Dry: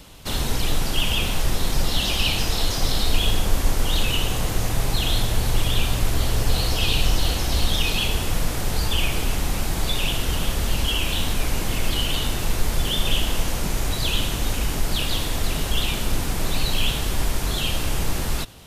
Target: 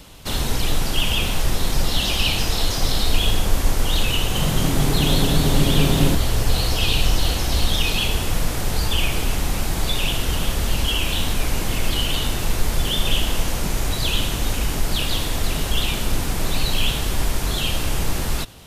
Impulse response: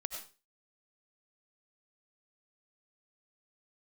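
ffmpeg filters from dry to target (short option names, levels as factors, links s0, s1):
-filter_complex "[0:a]asettb=1/sr,asplit=3[s0][s1][s2];[s0]atrim=end=4.134[s3];[s1]atrim=start=4.13:end=6.15,asetpts=PTS-STARTPTS,afade=t=in:d=0.004:c=qsin,afade=t=out:st=2.016:d=0.004:c=qsin,asplit=9[s4][s5][s6][s7][s8][s9][s10][s11][s12];[s5]adelay=220,afreqshift=130,volume=0.562[s13];[s6]adelay=440,afreqshift=260,volume=0.339[s14];[s7]adelay=660,afreqshift=390,volume=0.202[s15];[s8]adelay=880,afreqshift=520,volume=0.122[s16];[s9]adelay=1100,afreqshift=650,volume=0.0733[s17];[s10]adelay=1320,afreqshift=780,volume=0.0437[s18];[s11]adelay=1540,afreqshift=910,volume=0.0263[s19];[s12]adelay=1760,afreqshift=1040,volume=0.0157[s20];[s4][s13][s14][s15][s16][s17][s18][s19][s20]amix=inputs=9:normalize=0,atrim=end_sample=89082[s21];[s2]atrim=start=6.146[s22];[s3][s21]acrossfade=d=0.004:c1=hsin:c2=qsin[s23];[s23][s22]acrossfade=d=0.004:c1=qsin:c2=hsin,volume=1.19"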